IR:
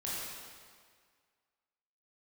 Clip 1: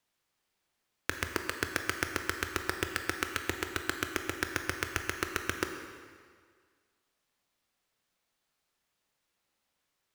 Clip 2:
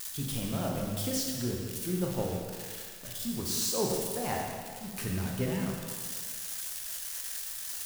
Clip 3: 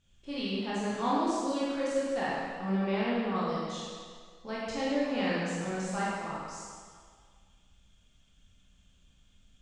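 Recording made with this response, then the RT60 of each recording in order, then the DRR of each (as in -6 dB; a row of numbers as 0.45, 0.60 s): 3; 1.8, 1.8, 1.8 s; 5.0, -1.0, -8.0 dB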